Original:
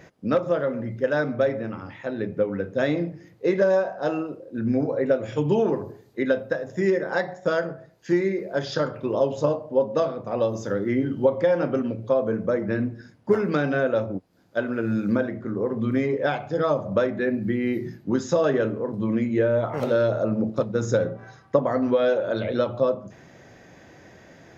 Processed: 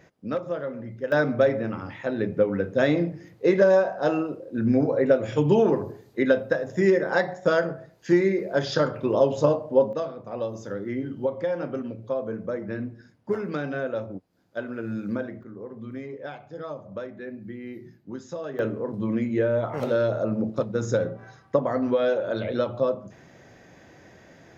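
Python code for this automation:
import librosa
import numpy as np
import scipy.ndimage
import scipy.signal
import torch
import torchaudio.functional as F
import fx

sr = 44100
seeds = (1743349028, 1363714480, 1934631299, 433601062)

y = fx.gain(x, sr, db=fx.steps((0.0, -6.5), (1.12, 2.0), (9.93, -6.5), (15.43, -13.0), (18.59, -2.0)))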